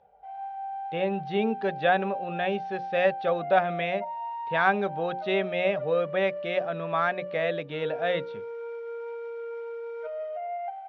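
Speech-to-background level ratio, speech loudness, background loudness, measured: 8.0 dB, −28.0 LKFS, −36.0 LKFS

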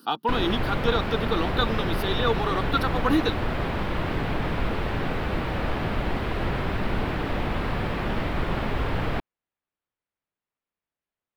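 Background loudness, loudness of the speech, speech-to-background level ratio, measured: −28.5 LKFS, −27.0 LKFS, 1.5 dB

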